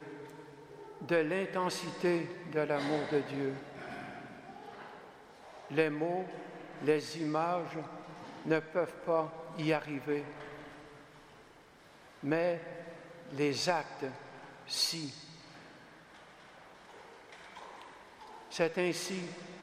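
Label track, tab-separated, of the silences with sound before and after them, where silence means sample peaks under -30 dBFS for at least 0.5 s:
3.510000	5.750000	silence
6.210000	6.840000	silence
7.800000	8.470000	silence
10.210000	12.270000	silence
12.550000	13.390000	silence
14.070000	14.730000	silence
15.040000	18.570000	silence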